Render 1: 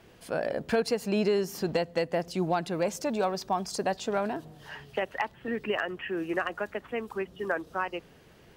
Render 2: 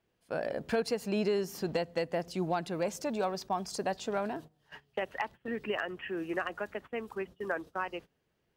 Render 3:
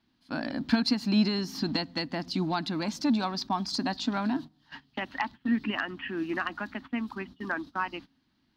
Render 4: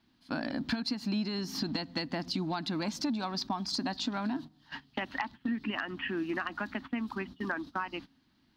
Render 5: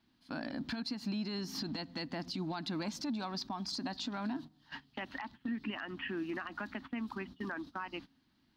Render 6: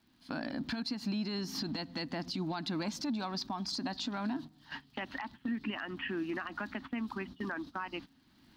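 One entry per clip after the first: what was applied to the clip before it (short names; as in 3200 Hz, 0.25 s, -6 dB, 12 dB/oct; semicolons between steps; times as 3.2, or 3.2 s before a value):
gate -41 dBFS, range -18 dB; gain -4 dB
EQ curve 170 Hz 0 dB, 270 Hz +14 dB, 450 Hz -17 dB, 910 Hz +2 dB, 2700 Hz 0 dB, 4200 Hz +11 dB, 7800 Hz -9 dB; gain +3.5 dB
compressor 5:1, threshold -33 dBFS, peak gain reduction 13.5 dB; gain +2.5 dB
limiter -26 dBFS, peak gain reduction 8 dB; gain -3.5 dB
recorder AGC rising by 17 dB/s; crackle 100/s -61 dBFS; gain +2 dB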